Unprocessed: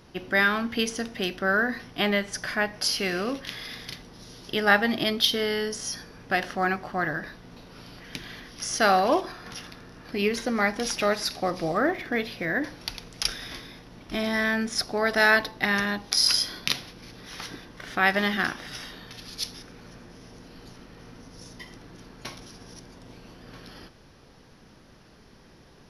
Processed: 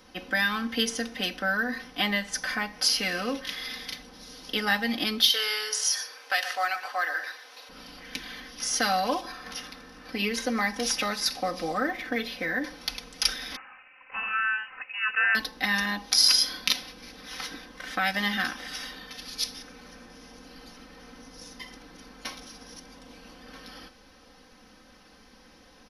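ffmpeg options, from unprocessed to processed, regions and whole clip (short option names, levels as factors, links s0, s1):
-filter_complex "[0:a]asettb=1/sr,asplit=3[s0][s1][s2];[s0]atrim=end=5.304[s3];[s1]atrim=start=5.3:end=7.69,asetpts=PTS-STARTPTS,afade=t=in:d=0.004:c=qsin,afade=t=out:st=2.386:d=0.004:c=qsin,highpass=f=420:w=0.5412,highpass=f=420:w=1.3066,tiltshelf=f=800:g=-5.5,aecho=1:1:119:0.224,atrim=end_sample=105399[s4];[s2]atrim=start=7.686[s5];[s3][s4]acrossfade=d=0.004:c1=hsin:c2=qsin[s6];[s6][s5]acrossfade=d=0.004:c1=qsin:c2=hsin,asettb=1/sr,asplit=3[s7][s8][s9];[s7]atrim=end=13.564[s10];[s8]atrim=start=13.56:end=15.35,asetpts=PTS-STARTPTS,afade=t=in:d=0.004:c=qsin,afade=t=out:st=1.786:d=0.004:c=qsin,highpass=f=660:w=0.5412,highpass=f=660:w=1.3066,lowpass=f=2800:t=q:w=0.5098,lowpass=f=2800:t=q:w=0.6013,lowpass=f=2800:t=q:w=0.9,lowpass=f=2800:t=q:w=2.563,afreqshift=-3300[s11];[s9]atrim=start=15.346[s12];[s10][s11]acrossfade=d=0.004:c1=hsin:c2=qsin[s13];[s13][s12]acrossfade=d=0.004:c1=qsin:c2=hsin,lowshelf=f=470:g=-7,acrossover=split=240|3000[s14][s15][s16];[s15]acompressor=threshold=0.0316:ratio=2.5[s17];[s14][s17][s16]amix=inputs=3:normalize=0,aecho=1:1:3.9:0.86"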